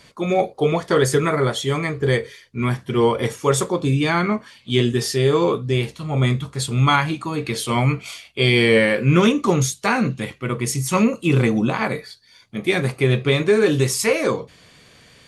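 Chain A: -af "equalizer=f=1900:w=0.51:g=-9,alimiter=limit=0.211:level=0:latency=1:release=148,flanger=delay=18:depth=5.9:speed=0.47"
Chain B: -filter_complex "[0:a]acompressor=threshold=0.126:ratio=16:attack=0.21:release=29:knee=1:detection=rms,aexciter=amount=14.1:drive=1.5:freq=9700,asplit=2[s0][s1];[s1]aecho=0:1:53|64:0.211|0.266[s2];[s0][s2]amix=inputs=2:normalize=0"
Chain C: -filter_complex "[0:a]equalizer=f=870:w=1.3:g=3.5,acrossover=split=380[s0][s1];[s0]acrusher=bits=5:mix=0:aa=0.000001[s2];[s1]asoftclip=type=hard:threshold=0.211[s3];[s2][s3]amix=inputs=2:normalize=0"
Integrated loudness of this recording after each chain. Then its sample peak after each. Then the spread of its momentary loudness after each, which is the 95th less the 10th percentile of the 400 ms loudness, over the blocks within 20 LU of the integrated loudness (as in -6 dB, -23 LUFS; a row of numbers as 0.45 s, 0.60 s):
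-27.5 LUFS, -22.5 LUFS, -19.5 LUFS; -13.5 dBFS, -2.5 dBFS, -5.0 dBFS; 6 LU, 10 LU, 8 LU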